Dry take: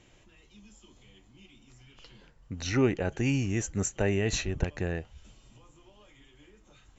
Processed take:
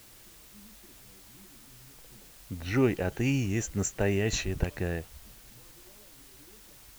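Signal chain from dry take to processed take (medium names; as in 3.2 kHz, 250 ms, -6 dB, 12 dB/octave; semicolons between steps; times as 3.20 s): level-controlled noise filter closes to 560 Hz, open at -25 dBFS; added noise white -54 dBFS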